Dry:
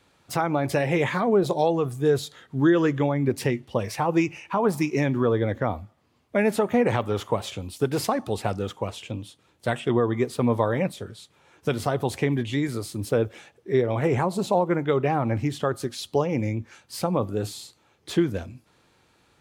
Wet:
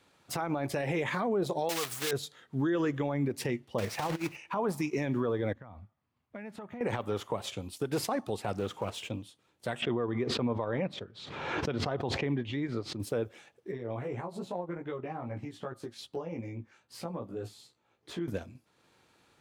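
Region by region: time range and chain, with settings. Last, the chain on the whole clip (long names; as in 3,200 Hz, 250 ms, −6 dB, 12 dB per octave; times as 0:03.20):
0:01.69–0:02.13: one scale factor per block 3 bits + tilt shelving filter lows −9.5 dB, about 690 Hz
0:03.78–0:04.37: one scale factor per block 3 bits + high-shelf EQ 5,800 Hz −8 dB + compressor whose output falls as the input rises −25 dBFS, ratio −0.5
0:05.53–0:06.81: low-pass filter 1,100 Hz 6 dB per octave + parametric band 420 Hz −12 dB 2 octaves + downward compressor 10 to 1, threshold −35 dBFS
0:08.54–0:09.09: mu-law and A-law mismatch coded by mu + upward compression, threshold −34 dBFS + highs frequency-modulated by the lows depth 0.14 ms
0:09.82–0:13.00: shaped tremolo triangle 2.1 Hz, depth 50% + high-frequency loss of the air 200 metres + background raised ahead of every attack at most 40 dB per second
0:13.71–0:18.28: high-shelf EQ 3,800 Hz −8.5 dB + downward compressor 3 to 1, threshold −28 dBFS + chorus effect 2.5 Hz, delay 16 ms, depth 2.1 ms
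whole clip: low-shelf EQ 68 Hz −11.5 dB; brickwall limiter −19 dBFS; transient designer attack 0 dB, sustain −5 dB; level −3 dB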